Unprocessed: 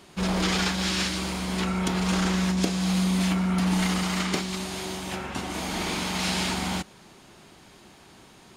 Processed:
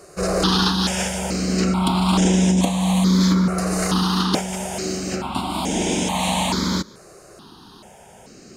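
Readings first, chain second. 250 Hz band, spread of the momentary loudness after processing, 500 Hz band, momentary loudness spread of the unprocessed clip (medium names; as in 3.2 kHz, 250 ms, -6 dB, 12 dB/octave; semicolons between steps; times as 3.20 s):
+7.0 dB, 9 LU, +8.5 dB, 8 LU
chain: ten-band graphic EQ 250 Hz +6 dB, 500 Hz +7 dB, 1 kHz +7 dB, 2 kHz -6 dB, 4 kHz +5 dB, 8 kHz +7 dB; stepped phaser 2.3 Hz 910–4300 Hz; trim +4.5 dB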